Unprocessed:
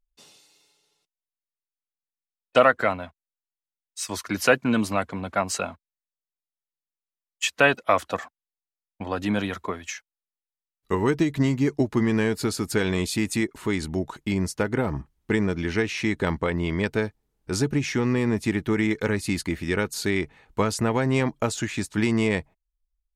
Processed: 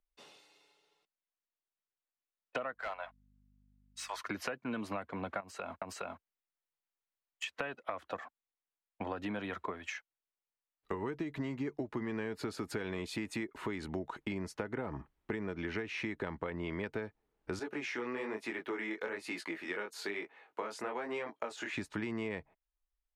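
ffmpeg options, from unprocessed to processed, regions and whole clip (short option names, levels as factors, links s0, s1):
-filter_complex "[0:a]asettb=1/sr,asplit=3[s0][s1][s2];[s0]atrim=end=2.744[s3];[s1]atrim=start=2.74:end=4.2,asetpts=PTS-STARTPTS,afade=t=in:d=0.004:c=qsin,afade=t=out:st=1.456:d=0.004:c=qsin,highpass=f=640:w=0.5412,highpass=f=640:w=1.3066,volume=15,asoftclip=hard,volume=0.0668,aeval=exprs='val(0)+0.00126*(sin(2*PI*50*n/s)+sin(2*PI*2*50*n/s)/2+sin(2*PI*3*50*n/s)/3+sin(2*PI*4*50*n/s)/4+sin(2*PI*5*50*n/s)/5)':c=same[s4];[s2]atrim=start=4.196[s5];[s3][s4]acrossfade=d=0.004:c1=hsin:c2=qsin[s6];[s6][s5]acrossfade=d=0.004:c1=qsin:c2=hsin,asettb=1/sr,asplit=3[s7][s8][s9];[s7]atrim=end=5.404[s10];[s8]atrim=start=5.4:end=7.44,asetpts=PTS-STARTPTS,afade=t=in:d=0.004:c=qsin,afade=t=out:st=2.036:d=0.004:c=qsin,highshelf=f=8100:g=8.5,aecho=1:1:416:0.668,atrim=end_sample=89964,acompressor=threshold=0.0282:ratio=10:attack=3.2:release=140:knee=1:detection=peak[s11];[s9]atrim=start=7.436[s12];[s10][s11]acrossfade=d=0.004:c1=hsin:c2=qsin[s13];[s13][s12]acrossfade=d=0.004:c1=qsin:c2=hsin,asettb=1/sr,asplit=3[s14][s15][s16];[s14]atrim=end=17.594[s17];[s15]atrim=start=17.59:end=21.73,asetpts=PTS-STARTPTS,afade=t=in:d=0.004:c=qsin,afade=t=out:st=4.136:d=0.004:c=qsin,highpass=410,flanger=delay=17:depth=7.4:speed=1.1[s18];[s16]atrim=start=21.726[s19];[s17][s18]acrossfade=d=0.004:c1=hsin:c2=qsin[s20];[s20][s19]acrossfade=d=0.004:c1=qsin:c2=hsin,acompressor=threshold=0.0355:ratio=6,bass=f=250:g=-11,treble=f=4000:g=-15,acrossover=split=230[s21][s22];[s22]acompressor=threshold=0.0112:ratio=2.5[s23];[s21][s23]amix=inputs=2:normalize=0,volume=1.12"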